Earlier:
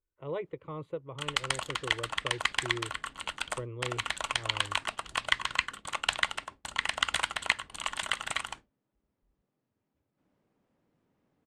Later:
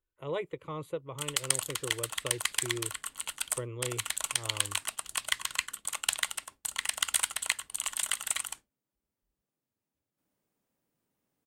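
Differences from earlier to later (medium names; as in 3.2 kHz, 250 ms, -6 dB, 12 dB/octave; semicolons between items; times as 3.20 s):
background -10.0 dB; master: remove tape spacing loss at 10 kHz 25 dB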